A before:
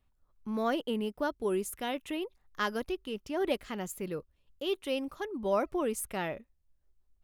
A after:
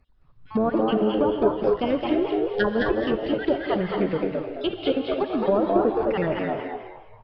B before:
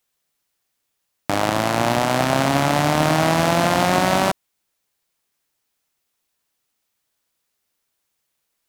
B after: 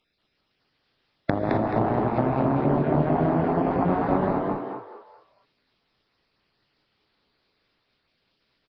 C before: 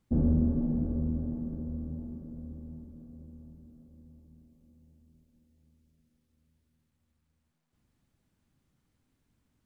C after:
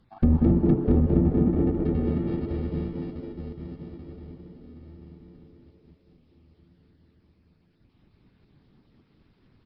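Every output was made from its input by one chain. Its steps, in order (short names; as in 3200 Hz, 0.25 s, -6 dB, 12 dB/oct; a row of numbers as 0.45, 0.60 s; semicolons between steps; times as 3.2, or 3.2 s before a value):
random spectral dropouts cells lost 38%; in parallel at -11.5 dB: sample-rate reducer 1000 Hz, jitter 0%; on the sum: downsampling 11025 Hz; compressor 6:1, threshold -27 dBFS; treble ducked by the level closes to 850 Hz, closed at -30 dBFS; on a send: frequency-shifting echo 0.215 s, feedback 32%, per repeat +100 Hz, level -3.5 dB; on the sum: non-linear reverb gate 0.29 s rising, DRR 4 dB; match loudness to -24 LUFS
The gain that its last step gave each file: +11.0, +6.5, +10.5 dB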